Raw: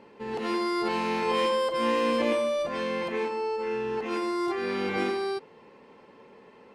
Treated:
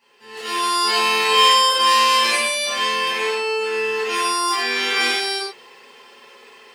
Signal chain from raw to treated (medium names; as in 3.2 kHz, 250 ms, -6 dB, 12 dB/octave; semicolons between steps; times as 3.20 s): differentiator; level rider gain up to 11 dB; in parallel at -8 dB: overload inside the chain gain 25 dB; on the sum: high-pass 49 Hz; comb of notches 300 Hz; reverberation, pre-delay 8 ms, DRR -9.5 dB